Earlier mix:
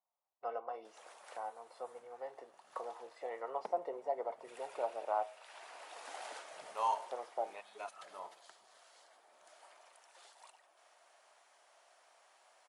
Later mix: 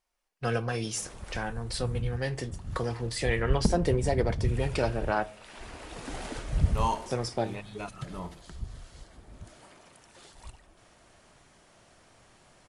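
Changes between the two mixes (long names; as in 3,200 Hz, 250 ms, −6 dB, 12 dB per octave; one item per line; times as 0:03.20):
first voice: remove Savitzky-Golay smoothing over 65 samples
second voice: add spectral tilt +1.5 dB per octave
master: remove four-pole ladder high-pass 560 Hz, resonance 35%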